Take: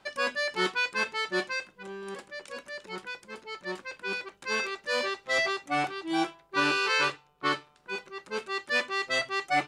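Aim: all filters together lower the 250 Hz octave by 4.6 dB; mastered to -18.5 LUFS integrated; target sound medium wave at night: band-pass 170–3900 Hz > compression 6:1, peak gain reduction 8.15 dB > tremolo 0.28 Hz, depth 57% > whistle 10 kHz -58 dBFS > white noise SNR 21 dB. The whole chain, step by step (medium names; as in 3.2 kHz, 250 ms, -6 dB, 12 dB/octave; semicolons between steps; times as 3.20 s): band-pass 170–3900 Hz; peaking EQ 250 Hz -6.5 dB; compression 6:1, threshold -30 dBFS; tremolo 0.28 Hz, depth 57%; whistle 10 kHz -58 dBFS; white noise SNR 21 dB; trim +20 dB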